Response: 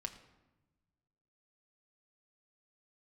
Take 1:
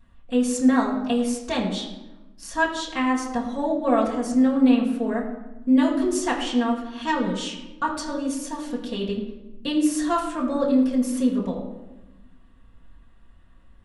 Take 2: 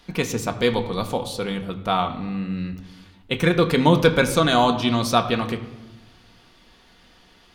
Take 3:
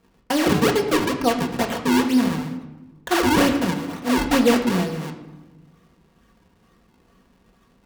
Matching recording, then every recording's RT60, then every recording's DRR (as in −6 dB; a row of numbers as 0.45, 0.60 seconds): 2; 1.0, 1.1, 1.1 seconds; −5.0, 4.5, 0.5 decibels